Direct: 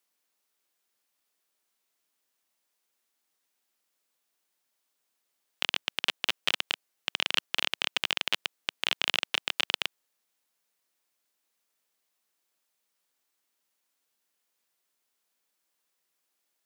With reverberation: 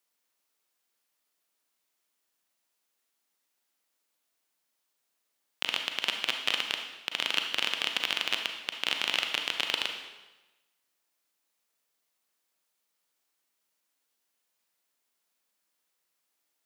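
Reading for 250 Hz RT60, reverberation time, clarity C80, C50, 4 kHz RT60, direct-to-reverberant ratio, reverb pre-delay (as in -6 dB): 1.1 s, 1.1 s, 8.0 dB, 5.5 dB, 1.0 s, 4.0 dB, 33 ms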